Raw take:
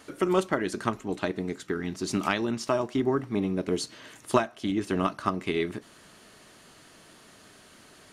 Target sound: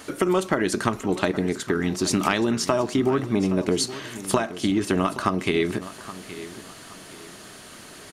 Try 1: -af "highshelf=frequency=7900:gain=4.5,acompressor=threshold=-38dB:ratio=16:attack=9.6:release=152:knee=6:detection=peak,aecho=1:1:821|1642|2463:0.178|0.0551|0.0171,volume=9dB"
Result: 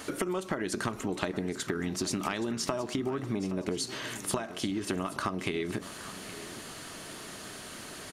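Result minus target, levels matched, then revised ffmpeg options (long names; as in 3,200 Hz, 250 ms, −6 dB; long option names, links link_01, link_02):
downward compressor: peak gain reduction +11 dB
-af "highshelf=frequency=7900:gain=4.5,acompressor=threshold=-26dB:ratio=16:attack=9.6:release=152:knee=6:detection=peak,aecho=1:1:821|1642|2463:0.178|0.0551|0.0171,volume=9dB"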